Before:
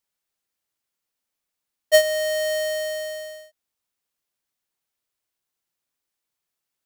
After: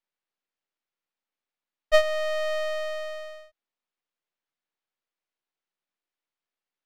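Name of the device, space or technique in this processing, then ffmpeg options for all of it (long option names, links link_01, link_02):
crystal radio: -af "highpass=210,lowpass=3400,aeval=exprs='if(lt(val(0),0),0.251*val(0),val(0))':channel_layout=same"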